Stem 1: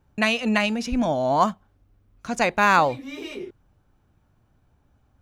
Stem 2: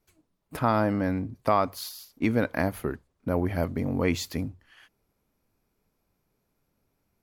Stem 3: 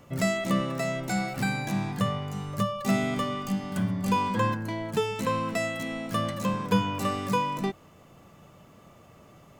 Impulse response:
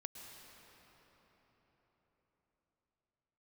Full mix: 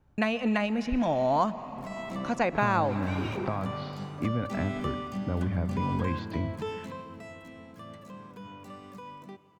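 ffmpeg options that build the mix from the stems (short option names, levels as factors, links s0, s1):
-filter_complex "[0:a]volume=0.708,asplit=3[s0][s1][s2];[s1]volume=0.447[s3];[1:a]lowpass=f=4000:w=0.5412,lowpass=f=4000:w=1.3066,acrossover=split=180[s4][s5];[s5]acompressor=threshold=0.01:ratio=2.5[s6];[s4][s6]amix=inputs=2:normalize=0,adelay=2000,volume=1.06,asplit=2[s7][s8];[s8]volume=0.473[s9];[2:a]highpass=120,alimiter=limit=0.0891:level=0:latency=1:release=48,adelay=1650,volume=0.501,afade=t=out:st=6.64:d=0.41:silence=0.298538,asplit=2[s10][s11];[s11]volume=0.501[s12];[s2]apad=whole_len=495793[s13];[s10][s13]sidechaincompress=threshold=0.0112:ratio=8:attack=16:release=507[s14];[3:a]atrim=start_sample=2205[s15];[s3][s9][s12]amix=inputs=3:normalize=0[s16];[s16][s15]afir=irnorm=-1:irlink=0[s17];[s0][s7][s14][s17]amix=inputs=4:normalize=0,acrossover=split=920|2800|7000[s18][s19][s20][s21];[s18]acompressor=threshold=0.0631:ratio=4[s22];[s19]acompressor=threshold=0.0316:ratio=4[s23];[s20]acompressor=threshold=0.00631:ratio=4[s24];[s21]acompressor=threshold=0.00112:ratio=4[s25];[s22][s23][s24][s25]amix=inputs=4:normalize=0,highshelf=f=3800:g=-6.5"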